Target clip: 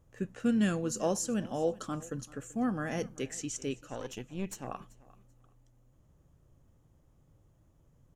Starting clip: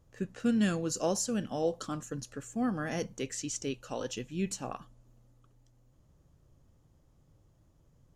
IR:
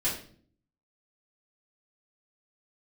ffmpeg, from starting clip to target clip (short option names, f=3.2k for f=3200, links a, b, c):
-filter_complex "[0:a]asettb=1/sr,asplit=3[a][b][c];[a]atrim=end=3.814[d];[b]atrim=start=3.81:end=4.67,asetpts=PTS-STARTPTS,afade=t=in:d=0.004:c=qsin,afade=t=out:st=0.856:d=0.004:c=qsin,aeval=exprs='(tanh(25.1*val(0)+0.7)-tanh(0.7))/25.1':c=same[e];[c]atrim=start=4.666[f];[d][e]acrossfade=d=0.004:c1=hsin:c2=qsin[g];[g][f]acrossfade=d=0.004:c1=qsin:c2=hsin,equalizer=f=4.6k:t=o:w=0.71:g=-6.5,aecho=1:1:386|772:0.0841|0.0194"